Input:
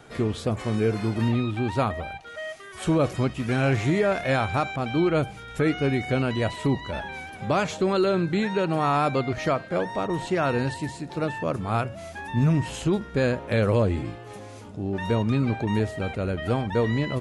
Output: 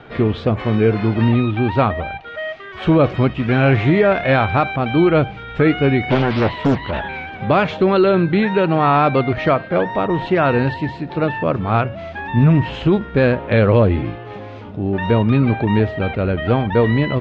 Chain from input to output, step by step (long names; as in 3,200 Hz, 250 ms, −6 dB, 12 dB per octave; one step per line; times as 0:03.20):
low-pass filter 3,500 Hz 24 dB per octave
0:06.10–0:07.31: highs frequency-modulated by the lows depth 0.86 ms
level +8.5 dB